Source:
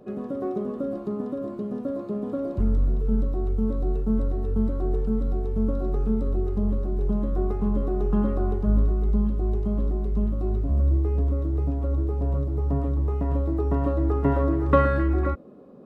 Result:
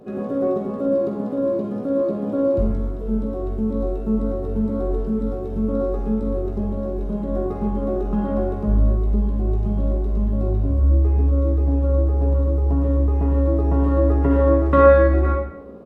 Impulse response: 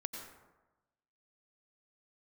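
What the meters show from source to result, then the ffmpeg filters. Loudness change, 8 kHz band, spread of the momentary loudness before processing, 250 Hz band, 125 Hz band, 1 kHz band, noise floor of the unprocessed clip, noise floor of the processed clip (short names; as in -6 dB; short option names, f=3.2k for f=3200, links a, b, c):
+5.0 dB, n/a, 7 LU, +4.5 dB, +4.5 dB, +5.0 dB, -35 dBFS, -28 dBFS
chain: -filter_complex "[0:a]asplit=2[a][b];[b]acompressor=threshold=-29dB:ratio=6,volume=0dB[c];[a][c]amix=inputs=2:normalize=0,aecho=1:1:18|47:0.473|0.376[d];[1:a]atrim=start_sample=2205,asetrate=70560,aresample=44100[e];[d][e]afir=irnorm=-1:irlink=0,volume=4.5dB"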